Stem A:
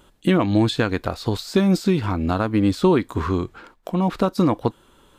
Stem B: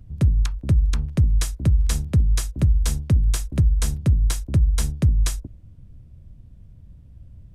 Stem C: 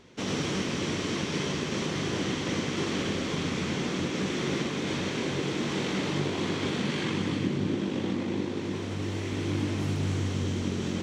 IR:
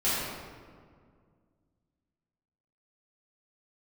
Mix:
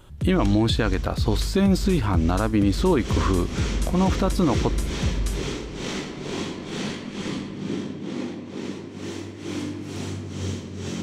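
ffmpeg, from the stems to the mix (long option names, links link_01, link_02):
-filter_complex "[0:a]volume=0.5dB[link_01];[1:a]volume=-8.5dB,asplit=2[link_02][link_03];[link_03]volume=-19dB[link_04];[2:a]bandreject=frequency=50:width_type=h:width=6,bandreject=frequency=100:width_type=h:width=6,bandreject=frequency=150:width_type=h:width=6,tremolo=f=2.2:d=0.93,adynamicequalizer=threshold=0.00282:dfrequency=4500:dqfactor=0.7:tfrequency=4500:tqfactor=0.7:attack=5:release=100:ratio=0.375:range=3.5:mode=boostabove:tftype=highshelf,volume=-1.5dB,afade=type=in:start_time=2.72:duration=0.26:silence=0.223872,asplit=2[link_05][link_06];[link_06]volume=-12.5dB[link_07];[3:a]atrim=start_sample=2205[link_08];[link_04][link_07]amix=inputs=2:normalize=0[link_09];[link_09][link_08]afir=irnorm=-1:irlink=0[link_10];[link_01][link_02][link_05][link_10]amix=inputs=4:normalize=0,alimiter=limit=-11.5dB:level=0:latency=1:release=33"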